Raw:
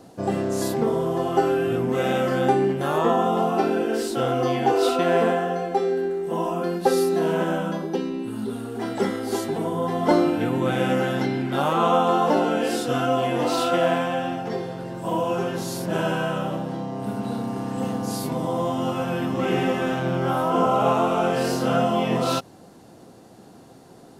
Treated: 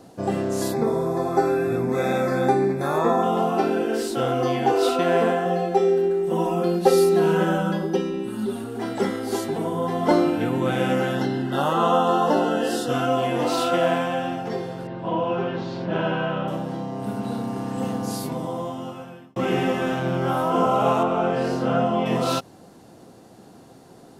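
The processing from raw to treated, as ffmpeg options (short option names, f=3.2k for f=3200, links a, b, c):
-filter_complex "[0:a]asettb=1/sr,asplit=3[a][b][c];[a]atrim=end=0.714[d];[b]atrim=start=0.71:end=3.23,asetpts=PTS-STARTPTS,afade=t=in:d=0.004:c=qsin,afade=t=out:st=2.516:d=0.004:c=qsin,asuperstop=centerf=3000:order=12:qfactor=4[e];[c]atrim=start=3.226[f];[d][e]acrossfade=d=0.004:c1=hsin:c2=qsin[g];[g][f]acrossfade=d=0.004:c1=qsin:c2=hsin,asettb=1/sr,asplit=3[h][i][j];[h]atrim=end=5.454[k];[i]atrim=start=5.45:end=8.64,asetpts=PTS-STARTPTS,afade=t=in:d=0.004:c=qsin,afade=t=out:st=3.186:d=0.004:c=qsin,aecho=1:1:5.4:0.79,atrim=end_sample=140679[l];[j]atrim=start=8.636[m];[k][l]acrossfade=d=0.004:c1=hsin:c2=qsin[n];[n][m]acrossfade=d=0.004:c1=qsin:c2=hsin,asettb=1/sr,asplit=3[o][p][q];[o]atrim=end=11.154[r];[p]atrim=start=11.15:end=12.9,asetpts=PTS-STARTPTS,afade=t=in:d=0.004:c=qsin,afade=t=out:st=1.746:d=0.004:c=qsin,asuperstop=centerf=2300:order=8:qfactor=4.4[s];[q]atrim=start=12.896[t];[r][s]acrossfade=d=0.004:c1=hsin:c2=qsin[u];[u][t]acrossfade=d=0.004:c1=qsin:c2=hsin,asettb=1/sr,asplit=3[v][w][x];[v]atrim=end=14.874[y];[w]atrim=start=14.87:end=16.48,asetpts=PTS-STARTPTS,afade=t=in:d=0.004:c=qsin,afade=t=out:st=1.606:d=0.004:c=qsin,lowpass=f=3.8k:w=0.5412,lowpass=f=3.8k:w=1.3066[z];[x]atrim=start=16.476[aa];[y][z]acrossfade=d=0.004:c1=hsin:c2=qsin[ab];[ab][aa]acrossfade=d=0.004:c1=qsin:c2=hsin,asettb=1/sr,asplit=3[ac][ad][ae];[ac]atrim=end=21.034[af];[ad]atrim=start=21.03:end=22.06,asetpts=PTS-STARTPTS,afade=t=in:d=0.004:c=qsin,afade=t=out:st=1.026:d=0.004:c=qsin,aemphasis=mode=reproduction:type=75kf[ag];[ae]atrim=start=22.056[ah];[af][ag]acrossfade=d=0.004:c1=hsin:c2=qsin[ai];[ai][ah]acrossfade=d=0.004:c1=qsin:c2=hsin,asplit=2[aj][ak];[aj]atrim=end=19.36,asetpts=PTS-STARTPTS,afade=t=out:st=18.06:d=1.3[al];[ak]atrim=start=19.36,asetpts=PTS-STARTPTS,afade=t=in:d=0.004:c=hsin[am];[al][am]concat=n=2:v=0:a=1"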